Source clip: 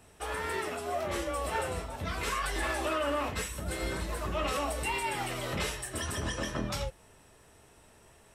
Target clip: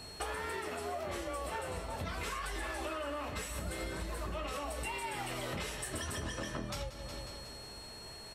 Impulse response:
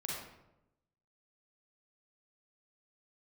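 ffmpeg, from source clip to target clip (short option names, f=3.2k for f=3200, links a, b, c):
-af "aecho=1:1:182|364|546|728|910|1092:0.178|0.103|0.0598|0.0347|0.0201|0.0117,aeval=exprs='val(0)+0.00158*sin(2*PI*4300*n/s)':c=same,acompressor=threshold=-43dB:ratio=10,volume=7dB"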